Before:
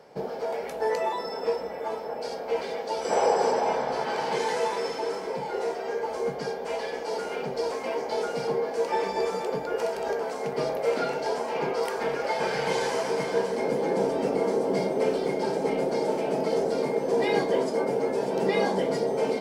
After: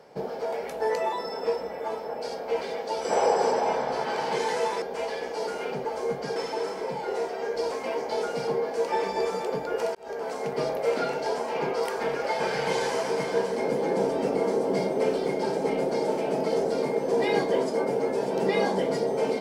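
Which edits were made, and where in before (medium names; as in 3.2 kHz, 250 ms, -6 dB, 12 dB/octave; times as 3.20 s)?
4.82–6.02 s: swap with 6.53–7.56 s
9.95–10.31 s: fade in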